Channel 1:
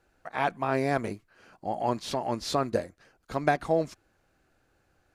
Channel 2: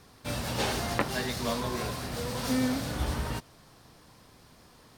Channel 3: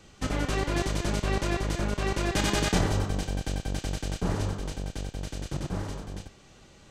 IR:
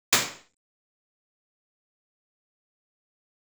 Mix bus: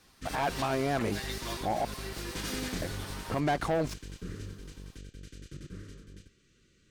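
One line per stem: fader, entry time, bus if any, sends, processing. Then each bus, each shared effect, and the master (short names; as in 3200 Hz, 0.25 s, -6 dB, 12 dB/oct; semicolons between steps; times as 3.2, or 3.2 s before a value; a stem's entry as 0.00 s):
-3.0 dB, 0.00 s, muted 1.85–2.82, no send, low-pass opened by the level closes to 610 Hz, open at -25.5 dBFS; sample leveller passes 3
-5.0 dB, 0.00 s, no send, HPF 1200 Hz 6 dB/oct; comb 7.5 ms, depth 73%
-11.0 dB, 0.00 s, no send, Chebyshev band-stop 420–1500 Hz, order 2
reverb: off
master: limiter -22.5 dBFS, peak gain reduction 9.5 dB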